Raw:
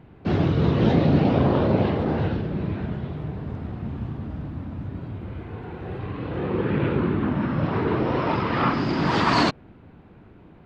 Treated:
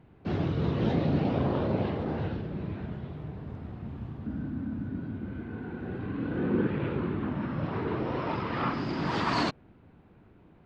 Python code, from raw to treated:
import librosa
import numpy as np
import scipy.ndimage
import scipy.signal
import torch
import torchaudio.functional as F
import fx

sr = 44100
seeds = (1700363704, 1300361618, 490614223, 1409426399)

y = fx.small_body(x, sr, hz=(240.0, 1500.0), ring_ms=30, db=13, at=(4.26, 6.67))
y = y * librosa.db_to_amplitude(-8.0)